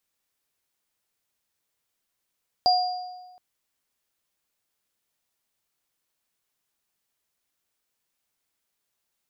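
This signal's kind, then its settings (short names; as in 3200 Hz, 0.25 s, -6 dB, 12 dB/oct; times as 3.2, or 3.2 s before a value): sine partials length 0.72 s, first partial 730 Hz, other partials 4810 Hz, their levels -3.5 dB, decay 1.28 s, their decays 0.88 s, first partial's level -16 dB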